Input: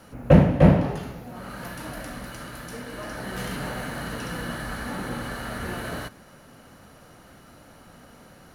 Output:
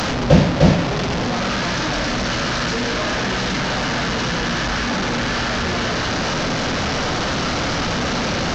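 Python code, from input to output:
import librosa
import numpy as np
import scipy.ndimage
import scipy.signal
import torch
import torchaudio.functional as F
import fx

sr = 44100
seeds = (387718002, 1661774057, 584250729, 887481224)

p1 = fx.delta_mod(x, sr, bps=32000, step_db=-17.0)
p2 = p1 + fx.room_flutter(p1, sr, wall_m=7.9, rt60_s=0.21, dry=0)
y = p2 * librosa.db_to_amplitude(2.0)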